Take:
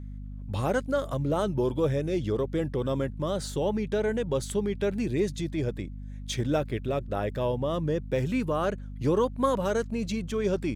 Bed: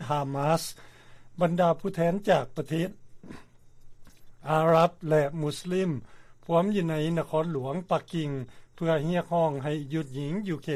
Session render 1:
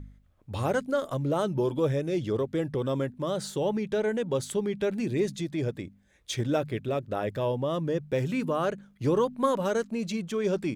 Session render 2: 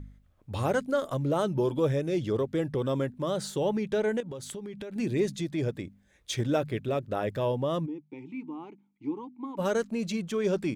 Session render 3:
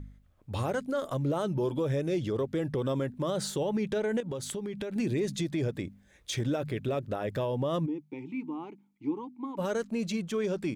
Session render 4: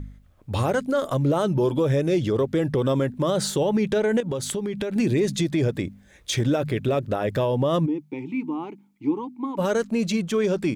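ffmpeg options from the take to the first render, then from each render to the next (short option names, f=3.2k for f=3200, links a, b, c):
-af "bandreject=f=50:t=h:w=4,bandreject=f=100:t=h:w=4,bandreject=f=150:t=h:w=4,bandreject=f=200:t=h:w=4,bandreject=f=250:t=h:w=4"
-filter_complex "[0:a]asettb=1/sr,asplit=3[a][b][c];[a]atrim=end=4.204[d];[b]atrim=start=4.2:end=4.96,asetpts=PTS-STARTPTS,afade=t=in:d=0.004:c=qsin,afade=t=out:st=0.756:d=0.004:c=qsin,acompressor=threshold=-35dB:ratio=12:attack=3.2:release=140:knee=1:detection=peak[e];[c]atrim=start=4.956[f];[d][e]acrossfade=d=0.004:c1=hsin:c2=qsin[g];[g][f]acrossfade=d=0.004:c1=qsin:c2=hsin,asplit=3[h][i][j];[h]afade=t=out:st=7.85:d=0.02[k];[i]asplit=3[l][m][n];[l]bandpass=f=300:t=q:w=8,volume=0dB[o];[m]bandpass=f=870:t=q:w=8,volume=-6dB[p];[n]bandpass=f=2.24k:t=q:w=8,volume=-9dB[q];[o][p][q]amix=inputs=3:normalize=0,afade=t=in:st=7.85:d=0.02,afade=t=out:st=9.57:d=0.02[r];[j]afade=t=in:st=9.57:d=0.02[s];[k][r][s]amix=inputs=3:normalize=0"
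-af "dynaudnorm=f=480:g=11:m=3.5dB,alimiter=limit=-22.5dB:level=0:latency=1:release=81"
-af "volume=8dB"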